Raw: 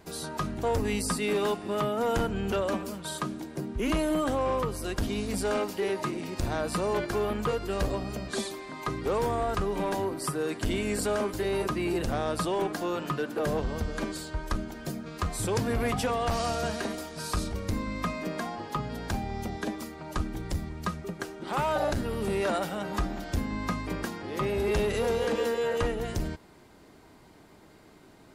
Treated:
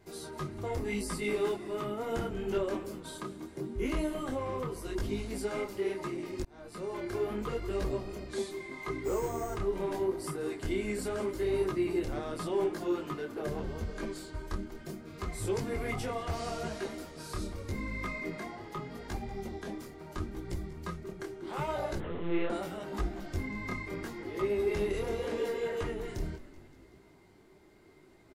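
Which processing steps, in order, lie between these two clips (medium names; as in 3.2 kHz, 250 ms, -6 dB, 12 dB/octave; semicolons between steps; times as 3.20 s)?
bass shelf 130 Hz +5 dB; hum notches 60/120/180/240/300/360 Hz; small resonant body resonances 370/2100 Hz, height 12 dB, ringing for 70 ms; frequency-shifting echo 190 ms, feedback 61%, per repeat -43 Hz, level -17 dB; 6.43–7.15 s: fade in linear; 9.04–9.56 s: careless resampling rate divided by 6×, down filtered, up hold; 21.98–22.50 s: monotone LPC vocoder at 8 kHz 170 Hz; detune thickener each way 27 cents; trim -5 dB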